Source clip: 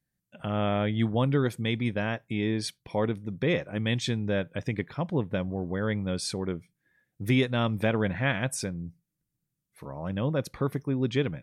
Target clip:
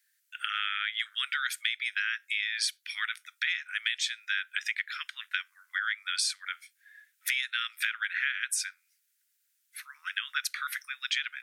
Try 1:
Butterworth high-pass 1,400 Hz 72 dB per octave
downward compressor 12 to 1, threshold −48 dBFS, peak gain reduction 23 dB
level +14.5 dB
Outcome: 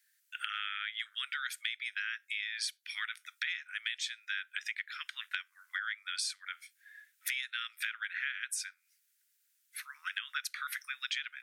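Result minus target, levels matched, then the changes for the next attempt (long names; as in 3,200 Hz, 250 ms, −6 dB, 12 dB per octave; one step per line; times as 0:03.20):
downward compressor: peak gain reduction +6.5 dB
change: downward compressor 12 to 1, threshold −41 dBFS, peak gain reduction 17 dB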